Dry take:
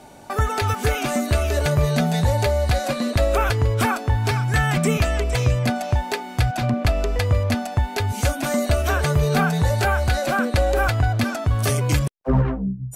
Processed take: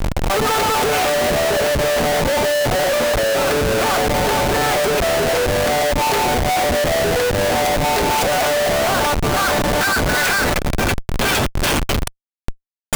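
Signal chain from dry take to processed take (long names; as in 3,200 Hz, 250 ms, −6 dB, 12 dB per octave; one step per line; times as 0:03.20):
compressor whose output falls as the input rises −25 dBFS, ratio −1
high-pass filter sweep 520 Hz → 3,000 Hz, 0:08.09–0:11.25
feedback delay with all-pass diffusion 1,179 ms, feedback 55%, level −15.5 dB
comparator with hysteresis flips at −30.5 dBFS
level +8 dB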